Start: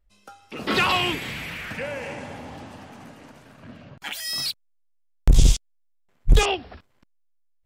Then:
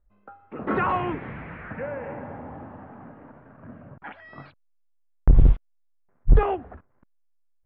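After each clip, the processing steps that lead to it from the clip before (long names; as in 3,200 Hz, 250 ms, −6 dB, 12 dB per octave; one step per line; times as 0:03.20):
inverse Chebyshev low-pass filter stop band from 8,300 Hz, stop band 80 dB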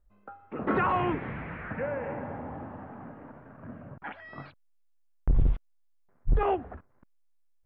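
brickwall limiter −17.5 dBFS, peak gain reduction 10 dB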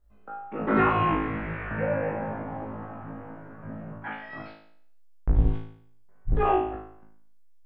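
flutter between parallel walls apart 3.2 metres, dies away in 0.62 s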